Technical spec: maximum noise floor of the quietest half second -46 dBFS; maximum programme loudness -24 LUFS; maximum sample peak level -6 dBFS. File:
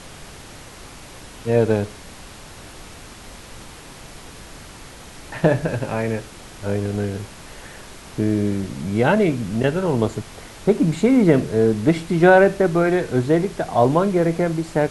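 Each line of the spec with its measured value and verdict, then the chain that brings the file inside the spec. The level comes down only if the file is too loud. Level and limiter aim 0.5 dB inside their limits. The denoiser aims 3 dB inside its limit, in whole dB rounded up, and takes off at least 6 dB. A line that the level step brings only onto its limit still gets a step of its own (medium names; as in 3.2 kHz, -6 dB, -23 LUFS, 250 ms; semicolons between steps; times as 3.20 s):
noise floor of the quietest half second -40 dBFS: fail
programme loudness -19.5 LUFS: fail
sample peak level -2.5 dBFS: fail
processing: noise reduction 6 dB, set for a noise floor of -40 dBFS; trim -5 dB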